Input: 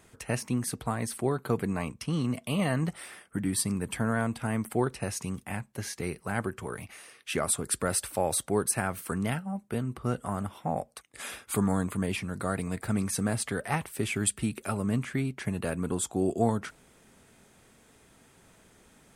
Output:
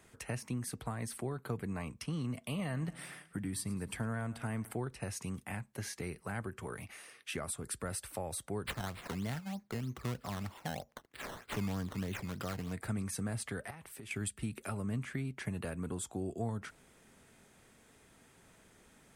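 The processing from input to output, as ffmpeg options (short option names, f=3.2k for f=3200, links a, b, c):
-filter_complex "[0:a]asettb=1/sr,asplit=3[a][b][c];[a]atrim=end=2.454[d];[b]atrim=start=2.45:end=4.71,asetpts=PTS-STARTPTS,afade=t=in:d=0.004:c=qsin,afade=t=out:st=2.256:d=0.004:c=qsin,aecho=1:1:107|214|321|428:0.0891|0.0508|0.029|0.0165,atrim=end_sample=99666[e];[c]atrim=start=4.706[f];[d][e]acrossfade=d=0.004:c1=hsin:c2=qsin[g];[g][f]acrossfade=d=0.004:c1=qsin:c2=hsin,asplit=3[h][i][j];[h]afade=t=out:st=8.64:d=0.02[k];[i]acrusher=samples=13:mix=1:aa=0.000001:lfo=1:lforange=13:lforate=3.2,afade=t=in:st=8.64:d=0.02,afade=t=out:st=12.72:d=0.02[l];[j]afade=t=in:st=12.72:d=0.02[m];[k][l][m]amix=inputs=3:normalize=0,asettb=1/sr,asplit=3[n][o][p];[n]atrim=end=13.704[q];[o]atrim=start=13.7:end=14.11,asetpts=PTS-STARTPTS,afade=t=in:d=0.004:c=qsin,afade=t=out:st=0.406:d=0.004:c=qsin,acompressor=threshold=-42dB:ratio=6:attack=3.2:release=140:knee=1:detection=peak[r];[p]atrim=start=14.106[s];[q][r]acrossfade=d=0.004:c1=hsin:c2=qsin[t];[t][s]acrossfade=d=0.004:c1=qsin:c2=hsin,equalizer=f=1.9k:t=o:w=0.77:g=2,acrossover=split=130[u][v];[v]acompressor=threshold=-35dB:ratio=3[w];[u][w]amix=inputs=2:normalize=0,volume=-4dB"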